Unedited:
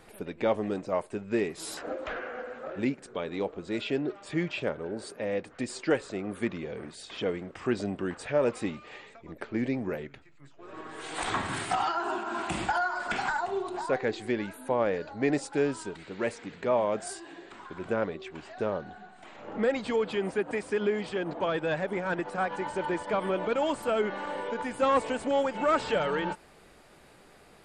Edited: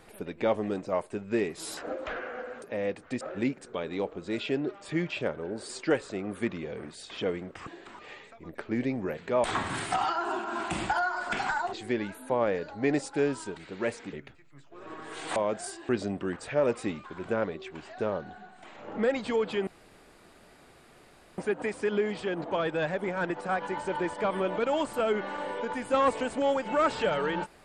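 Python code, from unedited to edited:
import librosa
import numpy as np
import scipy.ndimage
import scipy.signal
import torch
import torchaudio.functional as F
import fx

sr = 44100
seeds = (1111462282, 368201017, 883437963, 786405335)

y = fx.edit(x, sr, fx.move(start_s=5.1, length_s=0.59, to_s=2.62),
    fx.swap(start_s=7.67, length_s=1.15, other_s=17.32, other_length_s=0.32),
    fx.swap(start_s=10.0, length_s=1.23, other_s=16.52, other_length_s=0.27),
    fx.cut(start_s=13.52, length_s=0.6),
    fx.insert_room_tone(at_s=20.27, length_s=1.71), tone=tone)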